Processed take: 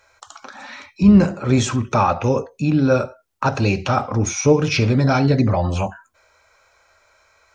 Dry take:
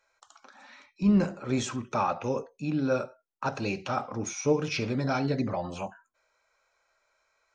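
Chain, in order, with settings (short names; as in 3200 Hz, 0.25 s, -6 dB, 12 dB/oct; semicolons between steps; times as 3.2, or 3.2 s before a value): bell 83 Hz +14.5 dB 0.91 oct; in parallel at +1 dB: compressor, threshold -40 dBFS, peak gain reduction 21.5 dB; on the sum: gain +8.5 dB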